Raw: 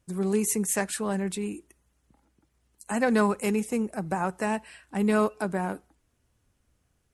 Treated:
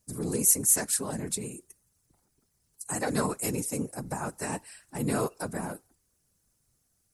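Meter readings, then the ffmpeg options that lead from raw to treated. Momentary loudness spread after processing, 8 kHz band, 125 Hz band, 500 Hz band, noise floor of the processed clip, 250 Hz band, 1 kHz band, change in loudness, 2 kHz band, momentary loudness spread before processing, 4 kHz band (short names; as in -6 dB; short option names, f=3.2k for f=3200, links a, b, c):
18 LU, +6.5 dB, -1.0 dB, -6.5 dB, -74 dBFS, -6.5 dB, -6.0 dB, -0.5 dB, -6.5 dB, 10 LU, +0.5 dB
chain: -af "aexciter=amount=3.7:drive=5.9:freq=4.3k,afftfilt=real='hypot(re,im)*cos(2*PI*random(0))':imag='hypot(re,im)*sin(2*PI*random(1))':win_size=512:overlap=0.75"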